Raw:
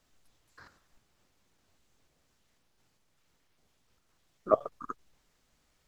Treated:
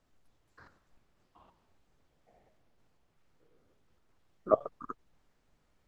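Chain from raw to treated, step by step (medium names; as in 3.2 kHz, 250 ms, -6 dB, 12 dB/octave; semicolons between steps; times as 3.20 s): ever faster or slower copies 487 ms, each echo -7 st, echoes 3, each echo -6 dB; treble shelf 2.2 kHz -11 dB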